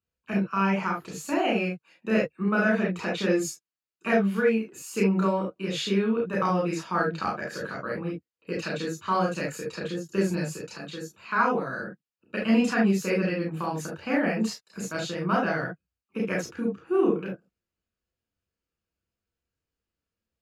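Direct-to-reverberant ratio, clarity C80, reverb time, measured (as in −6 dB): −2.5 dB, 17.0 dB, non-exponential decay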